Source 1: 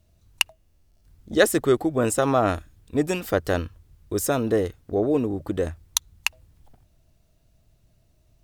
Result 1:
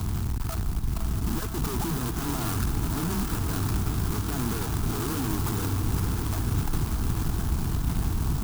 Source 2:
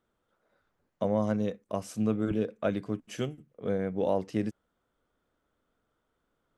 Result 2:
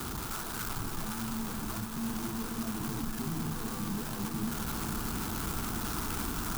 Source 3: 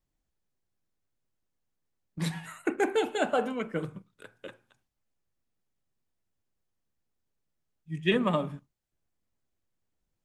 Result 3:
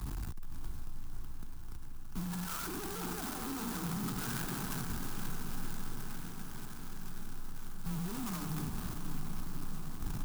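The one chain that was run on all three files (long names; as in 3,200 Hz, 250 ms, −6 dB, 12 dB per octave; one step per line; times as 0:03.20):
sign of each sample alone
phaser with its sweep stopped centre 1,300 Hz, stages 4
frequency shifter +14 Hz
linear-phase brick-wall low-pass 1,800 Hz
feedback delay with all-pass diffusion 548 ms, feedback 77%, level −6 dB
converter with an unsteady clock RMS 0.13 ms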